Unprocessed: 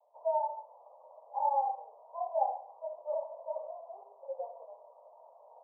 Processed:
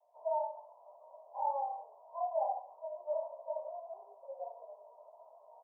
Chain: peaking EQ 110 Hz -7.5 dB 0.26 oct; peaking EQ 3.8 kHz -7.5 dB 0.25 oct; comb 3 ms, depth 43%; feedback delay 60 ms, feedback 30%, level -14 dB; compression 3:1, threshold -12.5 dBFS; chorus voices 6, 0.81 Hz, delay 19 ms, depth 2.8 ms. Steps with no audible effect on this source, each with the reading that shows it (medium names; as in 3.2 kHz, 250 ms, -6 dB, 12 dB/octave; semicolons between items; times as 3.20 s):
peaking EQ 110 Hz: input has nothing below 450 Hz; peaking EQ 3.8 kHz: input has nothing above 1.1 kHz; compression, threshold -12.5 dBFS: peak at its input -19.0 dBFS